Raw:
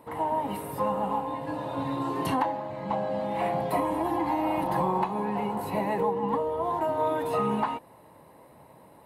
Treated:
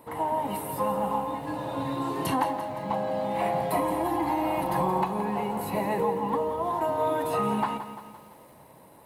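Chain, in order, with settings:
high-shelf EQ 5,600 Hz +7 dB
feedback echo at a low word length 172 ms, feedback 55%, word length 9 bits, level −11 dB

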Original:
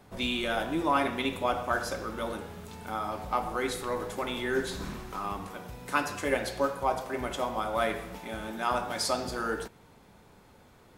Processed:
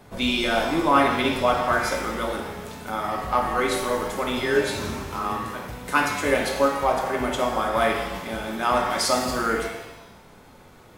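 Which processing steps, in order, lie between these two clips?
0:04.42–0:05.62: frequency shifter +24 Hz
reverb with rising layers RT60 1 s, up +7 semitones, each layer −8 dB, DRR 3 dB
level +5.5 dB

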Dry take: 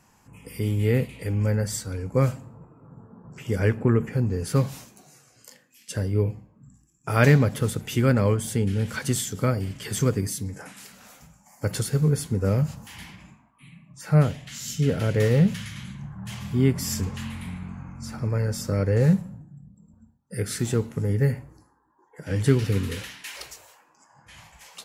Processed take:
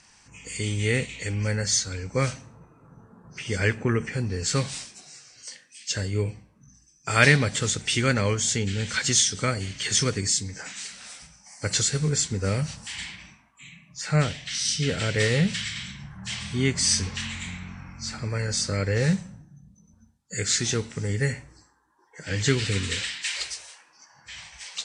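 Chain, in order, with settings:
hearing-aid frequency compression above 4,000 Hz 1.5 to 1
graphic EQ with 10 bands 125 Hz −5 dB, 250 Hz −4 dB, 500 Hz −3 dB, 1,000 Hz −3 dB, 2,000 Hz +6 dB, 4,000 Hz +8 dB, 8,000 Hz +9 dB
level +1 dB

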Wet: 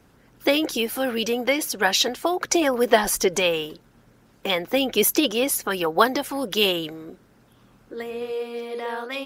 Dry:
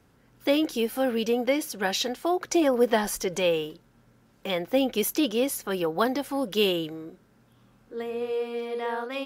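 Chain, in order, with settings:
harmonic and percussive parts rebalanced percussive +9 dB

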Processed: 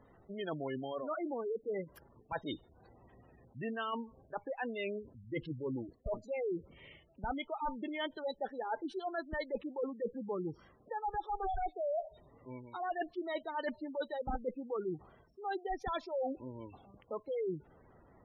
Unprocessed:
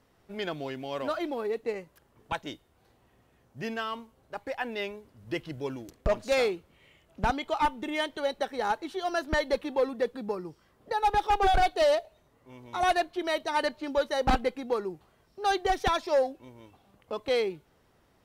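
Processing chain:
reversed playback
downward compressor 8 to 1, threshold −39 dBFS, peak gain reduction 18 dB
reversed playback
gate on every frequency bin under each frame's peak −15 dB strong
level +4.5 dB

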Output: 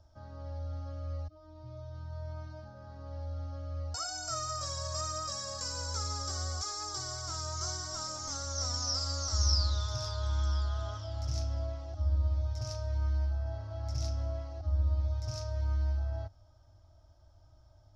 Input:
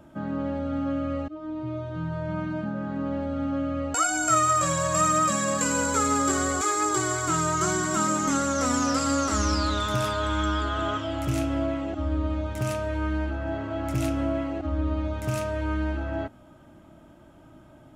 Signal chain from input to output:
drawn EQ curve 100 Hz 0 dB, 170 Hz −30 dB, 380 Hz −24 dB, 680 Hz −12 dB, 2,700 Hz −23 dB, 5,400 Hz +6 dB, 8,000 Hz −21 dB, 13,000 Hz −24 dB

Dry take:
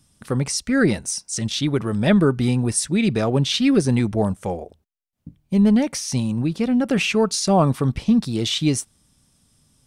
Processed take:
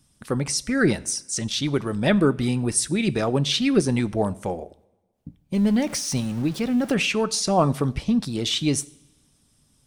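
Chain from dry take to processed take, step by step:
0:05.54–0:06.94: converter with a step at zero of −33 dBFS
coupled-rooms reverb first 0.56 s, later 1.6 s, from −17 dB, DRR 14 dB
harmonic and percussive parts rebalanced harmonic −5 dB

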